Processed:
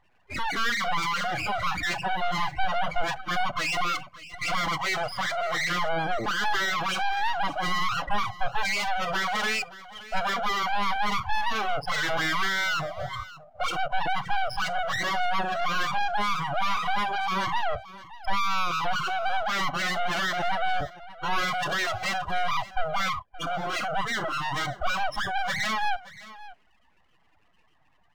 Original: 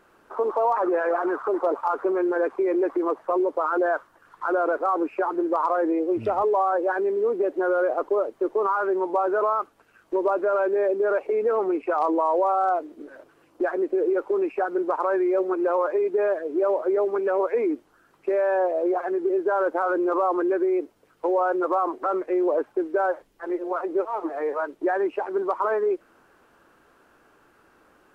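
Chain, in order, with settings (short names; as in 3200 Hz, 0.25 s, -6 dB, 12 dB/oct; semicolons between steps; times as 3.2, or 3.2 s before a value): loudest bins only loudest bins 8; overdrive pedal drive 31 dB, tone 1600 Hz, clips at -13 dBFS; full-wave rectifier; spectral noise reduction 19 dB; echo 0.573 s -17.5 dB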